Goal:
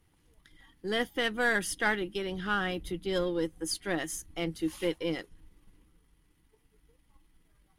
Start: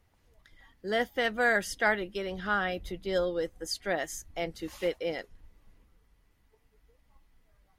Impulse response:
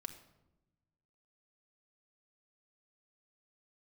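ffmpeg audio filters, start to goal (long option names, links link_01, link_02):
-af "aeval=exprs='if(lt(val(0),0),0.708*val(0),val(0))':channel_layout=same,equalizer=frequency=160:width_type=o:width=0.33:gain=9,equalizer=frequency=315:width_type=o:width=0.33:gain=10,equalizer=frequency=630:width_type=o:width=0.33:gain=-8,equalizer=frequency=3150:width_type=o:width=0.33:gain=5,equalizer=frequency=10000:width_type=o:width=0.33:gain=11"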